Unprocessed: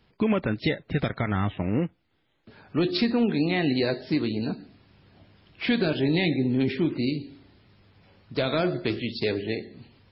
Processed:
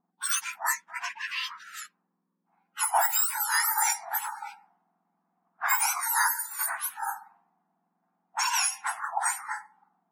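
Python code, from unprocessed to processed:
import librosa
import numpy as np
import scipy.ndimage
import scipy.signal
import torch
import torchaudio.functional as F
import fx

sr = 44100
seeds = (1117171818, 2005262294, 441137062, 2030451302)

y = fx.octave_mirror(x, sr, pivot_hz=1900.0)
y = fx.env_lowpass(y, sr, base_hz=350.0, full_db=-26.5)
y = y * librosa.db_to_amplitude(5.5)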